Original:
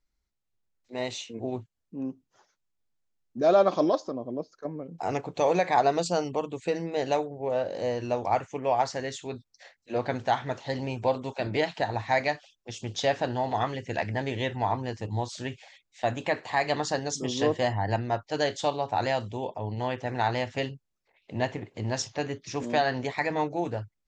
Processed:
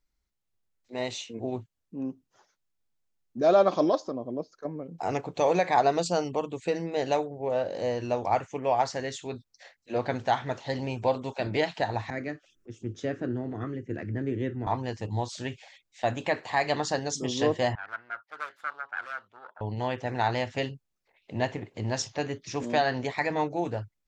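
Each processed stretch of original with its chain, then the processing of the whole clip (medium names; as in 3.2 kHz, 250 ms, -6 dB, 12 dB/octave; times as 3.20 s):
12.10–14.67 s: FFT filter 180 Hz 0 dB, 340 Hz +6 dB, 880 Hz -22 dB, 1.3 kHz -4 dB, 4.3 kHz -21 dB, 6.1 kHz -14 dB + upward compressor, threshold -42 dBFS + three bands expanded up and down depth 40%
17.75–19.61 s: self-modulated delay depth 0.48 ms + band-pass filter 1.4 kHz, Q 4.7
whole clip: none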